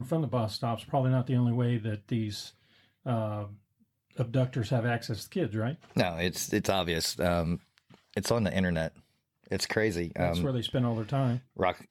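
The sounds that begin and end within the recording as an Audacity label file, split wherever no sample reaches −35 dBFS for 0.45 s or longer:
3.060000	3.460000	sound
4.190000	7.570000	sound
8.140000	8.880000	sound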